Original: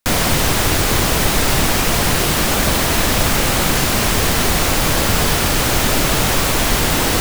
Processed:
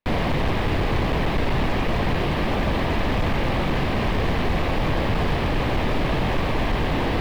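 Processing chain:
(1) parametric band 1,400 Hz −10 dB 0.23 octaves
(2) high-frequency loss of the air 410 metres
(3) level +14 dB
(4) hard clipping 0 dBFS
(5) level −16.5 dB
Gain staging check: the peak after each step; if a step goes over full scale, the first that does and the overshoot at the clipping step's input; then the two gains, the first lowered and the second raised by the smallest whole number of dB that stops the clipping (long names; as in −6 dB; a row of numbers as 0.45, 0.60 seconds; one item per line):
−2.0, −4.5, +9.5, 0.0, −16.5 dBFS
step 3, 9.5 dB
step 3 +4 dB, step 5 −6.5 dB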